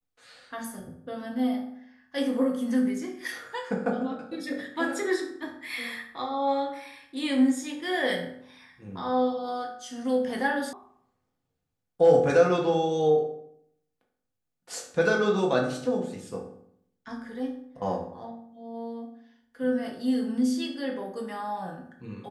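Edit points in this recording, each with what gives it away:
10.73 sound cut off

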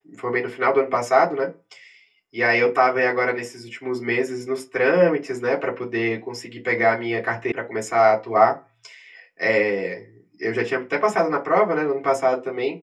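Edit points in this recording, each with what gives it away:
7.52 sound cut off

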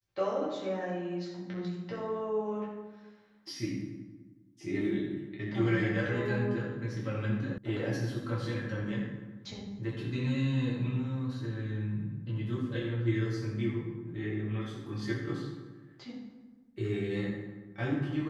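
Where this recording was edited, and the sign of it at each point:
7.58 sound cut off

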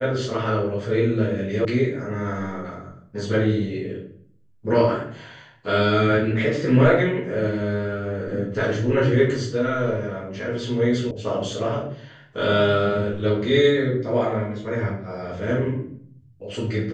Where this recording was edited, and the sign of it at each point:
1.65 sound cut off
11.11 sound cut off

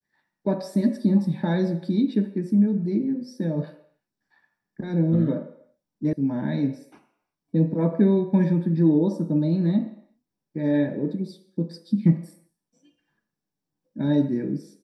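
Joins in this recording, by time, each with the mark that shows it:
6.13 sound cut off

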